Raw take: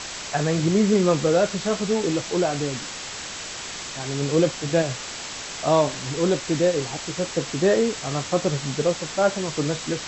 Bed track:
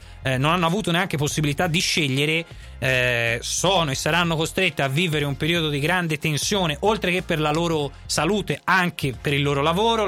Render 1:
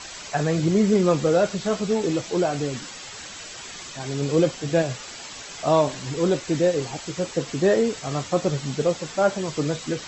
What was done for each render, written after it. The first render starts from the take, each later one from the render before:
broadband denoise 9 dB, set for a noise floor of −35 dBFS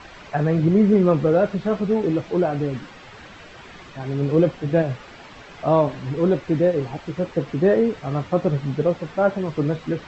low-pass filter 2,300 Hz 12 dB per octave
low-shelf EQ 340 Hz +5 dB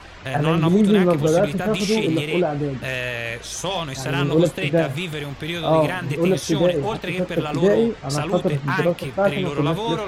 mix in bed track −6 dB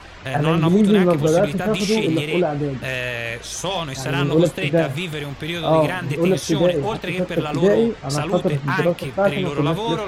level +1 dB

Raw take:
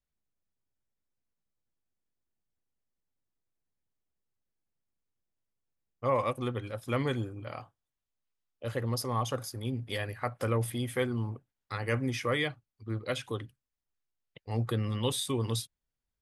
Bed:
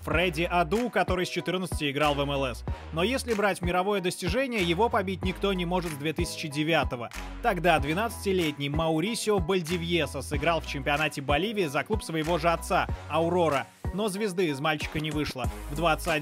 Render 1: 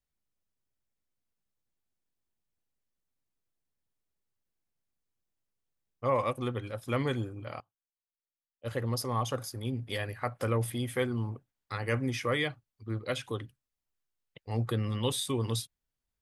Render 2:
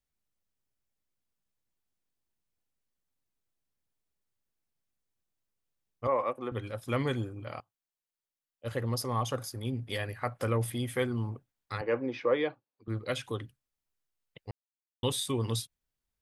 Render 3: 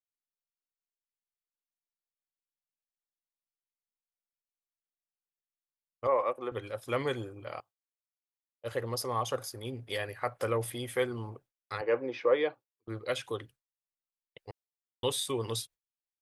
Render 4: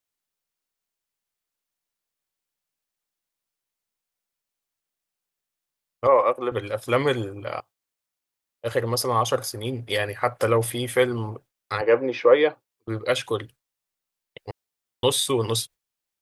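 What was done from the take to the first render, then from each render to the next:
0:07.60–0:08.71: expander for the loud parts 2.5 to 1, over −47 dBFS
0:06.07–0:06.52: three-way crossover with the lows and the highs turned down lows −19 dB, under 250 Hz, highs −15 dB, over 2,200 Hz; 0:11.81–0:12.88: loudspeaker in its box 270–3,700 Hz, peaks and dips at 320 Hz +5 dB, 500 Hz +7 dB, 920 Hz +4 dB, 1,300 Hz −3 dB, 2,000 Hz −7 dB, 3,100 Hz −8 dB; 0:14.51–0:15.03: silence
noise gate with hold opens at −47 dBFS; low shelf with overshoot 310 Hz −6.5 dB, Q 1.5
level +10 dB

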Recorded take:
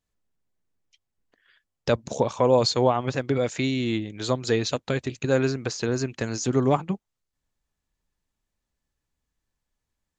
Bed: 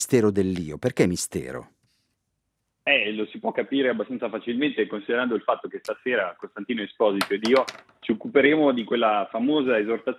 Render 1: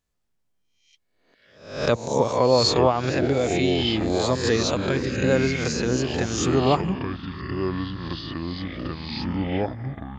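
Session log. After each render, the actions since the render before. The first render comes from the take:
peak hold with a rise ahead of every peak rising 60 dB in 0.58 s
delay with pitch and tempo change per echo 108 ms, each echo −6 semitones, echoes 2, each echo −6 dB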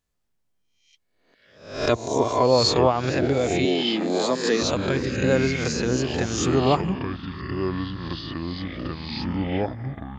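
0:01.74–0:02.43: comb filter 2.9 ms, depth 64%
0:03.65–0:04.62: Butterworth high-pass 170 Hz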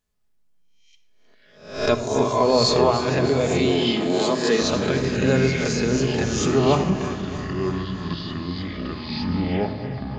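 feedback delay that plays each chunk backwards 157 ms, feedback 78%, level −12.5 dB
rectangular room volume 3,500 cubic metres, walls furnished, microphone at 1.4 metres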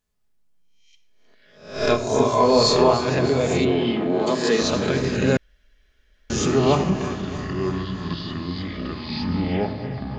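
0:01.73–0:02.94: double-tracking delay 28 ms −4 dB
0:03.64–0:04.26: low-pass filter 2,700 Hz → 1,600 Hz
0:05.37–0:06.30: fill with room tone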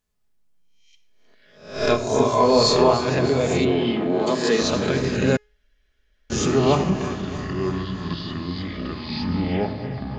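0:05.36–0:06.32: tuned comb filter 420 Hz, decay 0.44 s, mix 50%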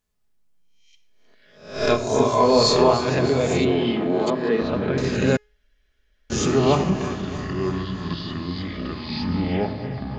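0:04.30–0:04.98: high-frequency loss of the air 450 metres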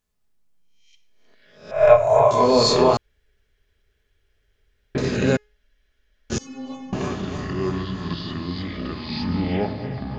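0:01.71–0:02.31: drawn EQ curve 140 Hz 0 dB, 300 Hz −30 dB, 600 Hz +12 dB, 1,600 Hz −1 dB, 2,300 Hz +2 dB, 4,800 Hz −24 dB, 7,600 Hz −8 dB
0:02.97–0:04.95: fill with room tone
0:06.38–0:06.93: stiff-string resonator 260 Hz, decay 0.61 s, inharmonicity 0.008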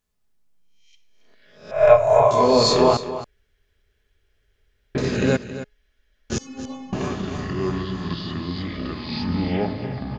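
single-tap delay 272 ms −13 dB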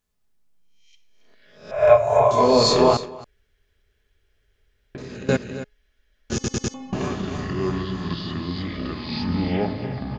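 0:01.75–0:02.38: notch comb filter 160 Hz
0:03.05–0:05.29: downward compressor 10 to 1, threshold −32 dBFS
0:06.34: stutter in place 0.10 s, 4 plays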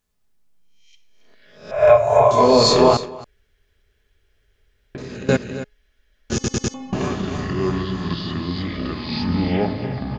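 level +3 dB
brickwall limiter −2 dBFS, peak gain reduction 2.5 dB

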